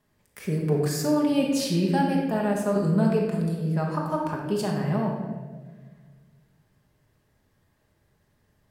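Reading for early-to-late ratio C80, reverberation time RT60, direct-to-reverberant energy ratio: 4.0 dB, 1.5 s, -2.0 dB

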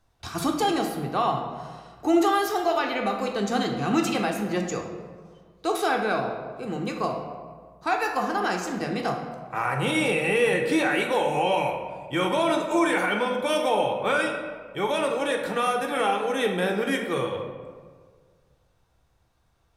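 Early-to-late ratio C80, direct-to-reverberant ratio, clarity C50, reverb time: 7.5 dB, 1.5 dB, 5.0 dB, 1.7 s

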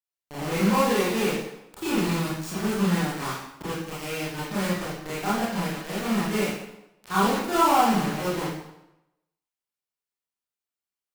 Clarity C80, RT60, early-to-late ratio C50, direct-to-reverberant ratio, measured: 3.5 dB, 0.90 s, -1.5 dB, -10.5 dB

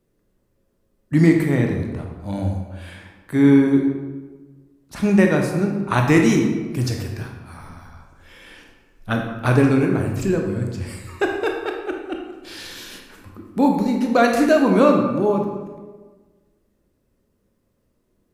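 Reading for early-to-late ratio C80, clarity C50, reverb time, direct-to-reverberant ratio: 6.0 dB, 3.5 dB, 1.4 s, 1.5 dB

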